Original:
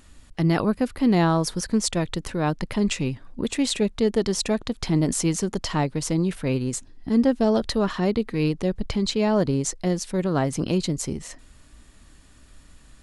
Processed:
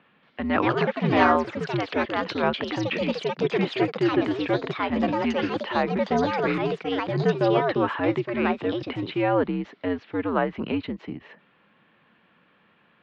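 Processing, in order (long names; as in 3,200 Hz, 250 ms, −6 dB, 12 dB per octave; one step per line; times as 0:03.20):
single-sideband voice off tune −87 Hz 290–3,100 Hz
dynamic equaliser 1,400 Hz, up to +5 dB, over −39 dBFS, Q 0.72
delay with pitch and tempo change per echo 229 ms, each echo +4 semitones, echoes 2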